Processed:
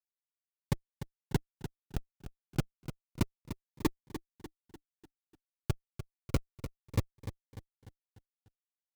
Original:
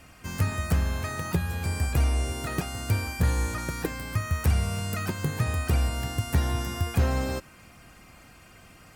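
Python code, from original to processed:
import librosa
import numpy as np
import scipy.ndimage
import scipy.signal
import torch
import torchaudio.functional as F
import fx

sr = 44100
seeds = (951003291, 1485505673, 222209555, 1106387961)

y = fx.low_shelf_res(x, sr, hz=470.0, db=10.0, q=3.0)
y = fx.hpss(y, sr, part='harmonic', gain_db=-13)
y = fx.peak_eq(y, sr, hz=1200.0, db=8.0, octaves=0.99)
y = fx.level_steps(y, sr, step_db=14)
y = fx.schmitt(y, sr, flips_db=-16.0)
y = fx.notch_comb(y, sr, f0_hz=650.0)
y = 10.0 ** (-29.5 / 20.0) * np.tanh(y / 10.0 ** (-29.5 / 20.0))
y = fx.echo_feedback(y, sr, ms=297, feedback_pct=47, wet_db=-11)
y = fx.notch_cascade(y, sr, direction='falling', hz=0.3)
y = y * librosa.db_to_amplitude(10.0)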